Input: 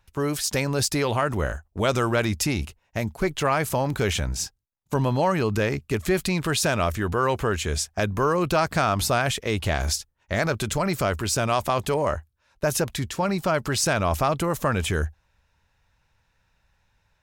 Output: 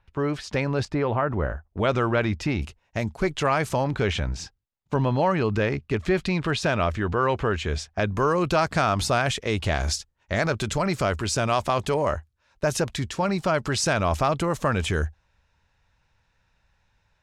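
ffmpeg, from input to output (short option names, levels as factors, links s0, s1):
-af "asetnsamples=n=441:p=0,asendcmd='0.85 lowpass f 1600;1.7 lowpass f 3000;2.62 lowpass f 7000;3.84 lowpass f 3900;8.06 lowpass f 7500',lowpass=2900"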